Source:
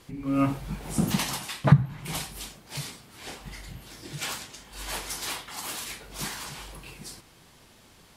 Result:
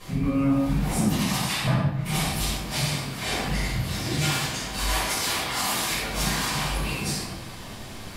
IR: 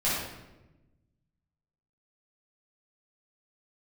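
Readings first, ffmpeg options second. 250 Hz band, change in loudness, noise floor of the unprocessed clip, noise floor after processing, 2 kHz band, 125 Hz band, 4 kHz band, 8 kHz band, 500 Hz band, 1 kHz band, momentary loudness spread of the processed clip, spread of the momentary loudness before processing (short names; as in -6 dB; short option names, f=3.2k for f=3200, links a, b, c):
+4.0 dB, +4.0 dB, -55 dBFS, -39 dBFS, +8.5 dB, +1.5 dB, +8.5 dB, +7.0 dB, +5.5 dB, +6.5 dB, 5 LU, 18 LU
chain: -filter_complex "[0:a]acompressor=threshold=-37dB:ratio=8[a];[1:a]atrim=start_sample=2205,afade=t=out:st=0.43:d=0.01,atrim=end_sample=19404[b];[a][b]afir=irnorm=-1:irlink=0,volume=4.5dB"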